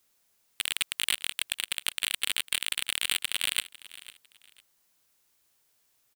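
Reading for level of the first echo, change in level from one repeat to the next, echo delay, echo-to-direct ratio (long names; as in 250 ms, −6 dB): −18.0 dB, −11.5 dB, 501 ms, −17.5 dB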